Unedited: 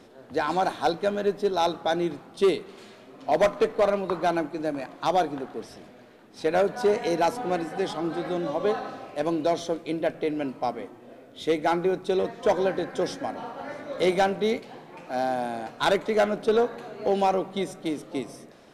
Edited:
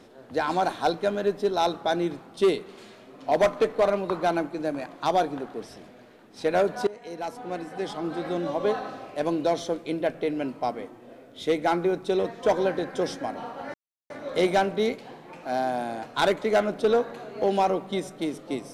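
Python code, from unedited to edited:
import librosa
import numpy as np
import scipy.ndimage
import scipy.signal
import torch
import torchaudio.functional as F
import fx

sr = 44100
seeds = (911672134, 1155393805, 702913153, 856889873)

y = fx.edit(x, sr, fx.fade_in_from(start_s=6.87, length_s=1.49, floor_db=-20.5),
    fx.insert_silence(at_s=13.74, length_s=0.36), tone=tone)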